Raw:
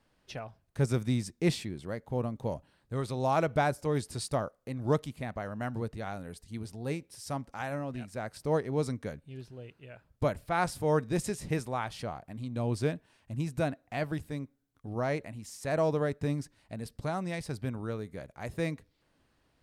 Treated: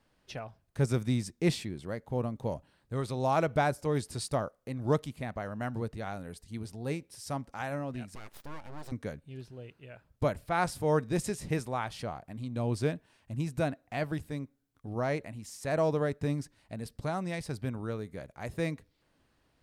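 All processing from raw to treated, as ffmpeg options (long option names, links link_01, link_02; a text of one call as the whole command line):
ffmpeg -i in.wav -filter_complex "[0:a]asettb=1/sr,asplit=3[link_01][link_02][link_03];[link_01]atrim=end=8.154[link_04];[link_02]atrim=start=8.15:end=8.92,asetpts=PTS-STARTPTS,afade=type=in:duration=0.004:curve=qsin,afade=type=out:start_time=0.766:duration=0.004:curve=qsin,highpass=frequency=120:poles=1,acompressor=threshold=-42dB:ratio=2.5:attack=3.2:release=140:knee=1:detection=peak,aeval=exprs='abs(val(0))':channel_layout=same[link_05];[link_03]atrim=start=8.916[link_06];[link_04][link_05]acrossfade=duration=0.004:curve1=hsin:curve2=qsin[link_07];[link_07][link_06]acrossfade=duration=0.004:curve1=qsin:curve2=hsin" out.wav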